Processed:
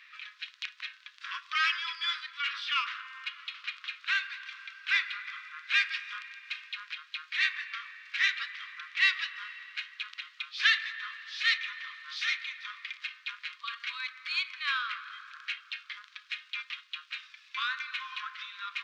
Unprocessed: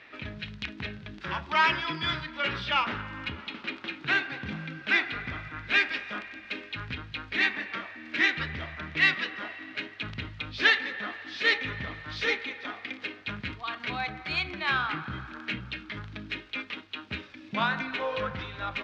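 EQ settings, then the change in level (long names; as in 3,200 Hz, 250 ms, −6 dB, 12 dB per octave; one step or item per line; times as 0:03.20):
linear-phase brick-wall high-pass 1,000 Hz
high-shelf EQ 2,600 Hz +11 dB
−7.0 dB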